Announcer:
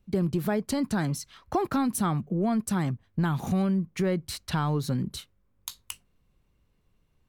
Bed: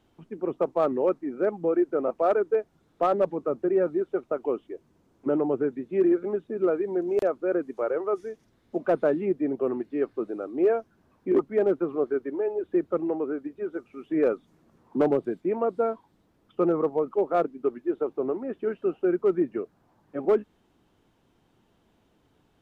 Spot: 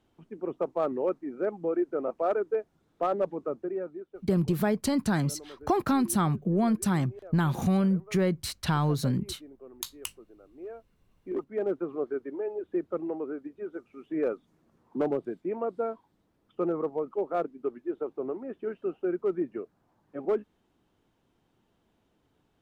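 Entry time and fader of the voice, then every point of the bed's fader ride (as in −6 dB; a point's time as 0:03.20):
4.15 s, +1.0 dB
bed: 0:03.47 −4.5 dB
0:04.39 −22 dB
0:10.49 −22 dB
0:11.72 −5.5 dB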